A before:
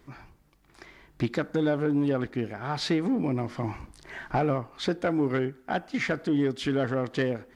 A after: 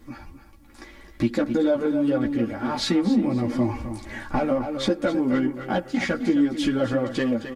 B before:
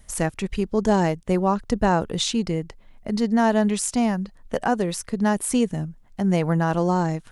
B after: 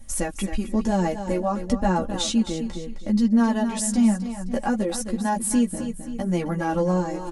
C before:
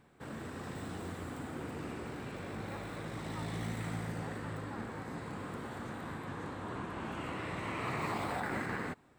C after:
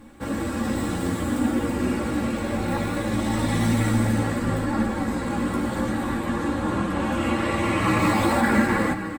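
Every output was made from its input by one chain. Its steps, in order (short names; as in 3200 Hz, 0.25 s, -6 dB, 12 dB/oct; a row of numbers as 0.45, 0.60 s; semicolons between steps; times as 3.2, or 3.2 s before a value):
low shelf 450 Hz +7 dB; on a send: feedback echo 0.262 s, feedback 30%, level -11 dB; on the sum: chorus voices 6, 0.23 Hz, delay 13 ms, depth 4.4 ms; bell 12000 Hz +6.5 dB 1.6 oct; comb 3.6 ms, depth 64%; in parallel at +3 dB: compressor, threshold -26 dBFS; on the sum: match loudness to -24 LUFS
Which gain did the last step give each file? -3.0, -7.5, +6.5 dB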